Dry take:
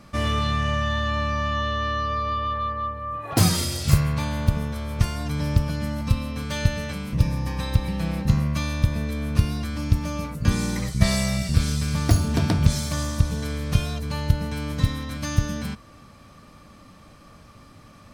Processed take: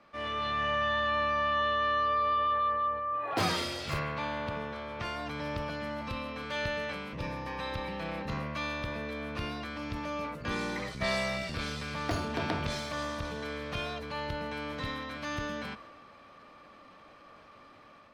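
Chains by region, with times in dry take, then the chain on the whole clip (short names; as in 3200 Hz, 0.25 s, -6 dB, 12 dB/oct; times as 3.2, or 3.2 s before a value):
3.99–5.05 HPF 66 Hz + air absorption 52 m + companded quantiser 8-bit
whole clip: three-band isolator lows -18 dB, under 320 Hz, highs -20 dB, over 3900 Hz; AGC gain up to 6 dB; transient shaper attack -4 dB, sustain +4 dB; gain -7 dB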